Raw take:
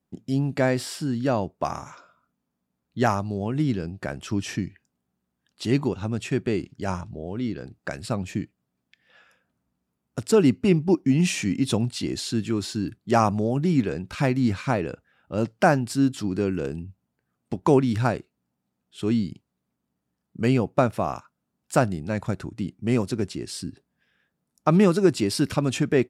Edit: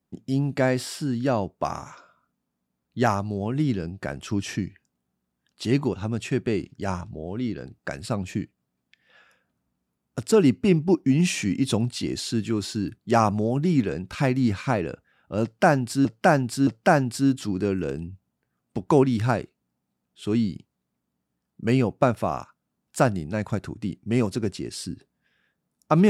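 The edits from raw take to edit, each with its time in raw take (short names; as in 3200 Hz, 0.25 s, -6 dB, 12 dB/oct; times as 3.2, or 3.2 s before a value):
15.43–16.05 loop, 3 plays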